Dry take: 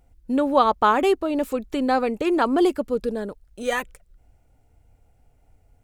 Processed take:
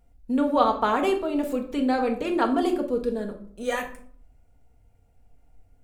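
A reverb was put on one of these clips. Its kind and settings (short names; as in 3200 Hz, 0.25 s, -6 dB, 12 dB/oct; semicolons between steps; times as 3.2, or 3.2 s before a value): shoebox room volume 670 m³, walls furnished, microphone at 1.7 m; gain -5 dB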